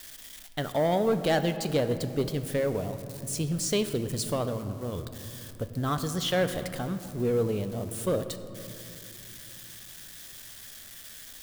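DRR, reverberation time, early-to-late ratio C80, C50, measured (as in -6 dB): 9.0 dB, 2.9 s, 11.0 dB, 10.5 dB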